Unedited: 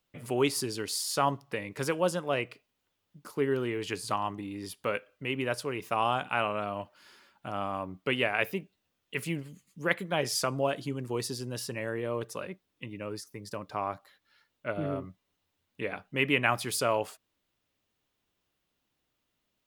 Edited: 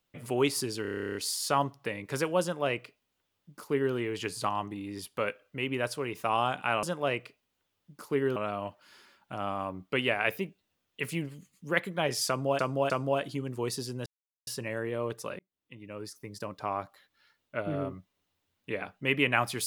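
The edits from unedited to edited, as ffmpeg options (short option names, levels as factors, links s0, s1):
-filter_complex "[0:a]asplit=18[s0][s1][s2][s3][s4][s5][s6][s7][s8][s9][s10][s11][s12][s13][s14][s15][s16][s17];[s0]atrim=end=0.852[s18];[s1]atrim=start=0.818:end=0.852[s19];[s2]atrim=start=0.818:end=0.852[s20];[s3]atrim=start=0.818:end=0.852[s21];[s4]atrim=start=0.818:end=0.852[s22];[s5]atrim=start=0.818:end=0.852[s23];[s6]atrim=start=0.818:end=0.852[s24];[s7]atrim=start=0.818:end=0.852[s25];[s8]atrim=start=0.818:end=0.852[s26];[s9]atrim=start=0.818:end=0.852[s27];[s10]atrim=start=0.818:end=0.852[s28];[s11]atrim=start=0.818:end=6.502[s29];[s12]atrim=start=2.088:end=3.622[s30];[s13]atrim=start=6.498:end=10.732[s31];[s14]atrim=start=10.418:end=10.732[s32];[s15]atrim=start=10.418:end=11.58,asetpts=PTS-STARTPTS,afade=t=out:st=1.158:d=0.004:c=hsin,apad=pad_dur=0.41[s33];[s16]atrim=start=11.58:end=12.5,asetpts=PTS-STARTPTS,afade=t=in:d=0.004:c=hsin,afade=t=out:st=0.916:d=0.004:c=hsin[s34];[s17]atrim=start=12.5,asetpts=PTS-STARTPTS,afade=t=in:d=0.86[s35];[s18][s19]acrossfade=d=0.004:c1=hsin:c2=hsin[s36];[s36][s20]acrossfade=d=0.004:c1=hsin:c2=hsin[s37];[s37][s21]acrossfade=d=0.004:c1=hsin:c2=hsin[s38];[s38][s22]acrossfade=d=0.004:c1=hsin:c2=hsin[s39];[s39][s23]acrossfade=d=0.004:c1=hsin:c2=hsin[s40];[s40][s24]acrossfade=d=0.004:c1=hsin:c2=hsin[s41];[s41][s25]acrossfade=d=0.004:c1=hsin:c2=hsin[s42];[s42][s26]acrossfade=d=0.004:c1=hsin:c2=hsin[s43];[s43][s27]acrossfade=d=0.004:c1=hsin:c2=hsin[s44];[s44][s28]acrossfade=d=0.004:c1=hsin:c2=hsin[s45];[s45][s29]acrossfade=d=0.004:c1=hsin:c2=hsin[s46];[s46][s30]acrossfade=d=0.004:c1=hsin:c2=hsin[s47];[s47][s31]acrossfade=d=0.004:c1=hsin:c2=hsin[s48];[s48][s32]acrossfade=d=0.004:c1=hsin:c2=hsin[s49];[s33][s34][s35]concat=n=3:v=0:a=1[s50];[s49][s50]acrossfade=d=0.004:c1=hsin:c2=hsin"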